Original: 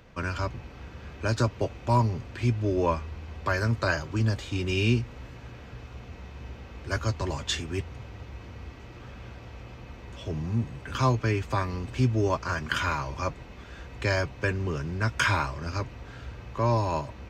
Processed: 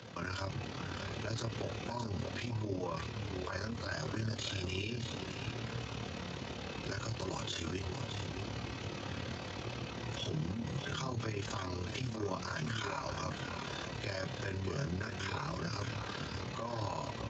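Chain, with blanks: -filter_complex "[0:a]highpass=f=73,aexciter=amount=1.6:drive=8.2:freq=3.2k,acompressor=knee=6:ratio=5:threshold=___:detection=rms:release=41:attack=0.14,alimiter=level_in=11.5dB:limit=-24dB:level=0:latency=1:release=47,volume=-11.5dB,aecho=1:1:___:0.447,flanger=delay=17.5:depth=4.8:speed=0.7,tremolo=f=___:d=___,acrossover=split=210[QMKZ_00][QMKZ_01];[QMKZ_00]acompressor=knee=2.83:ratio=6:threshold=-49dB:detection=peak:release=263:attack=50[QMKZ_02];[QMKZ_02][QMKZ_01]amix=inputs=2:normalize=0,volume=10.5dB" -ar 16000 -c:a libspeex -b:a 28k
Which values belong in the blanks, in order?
-36dB, 618, 36, 0.621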